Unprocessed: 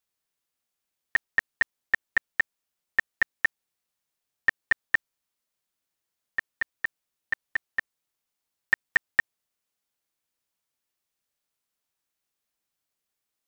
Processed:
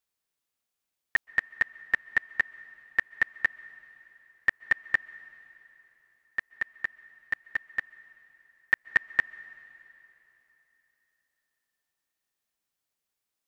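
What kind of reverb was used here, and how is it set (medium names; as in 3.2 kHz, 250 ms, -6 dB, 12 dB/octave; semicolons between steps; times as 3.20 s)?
plate-style reverb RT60 3.5 s, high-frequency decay 0.95×, pre-delay 115 ms, DRR 19.5 dB; trim -1.5 dB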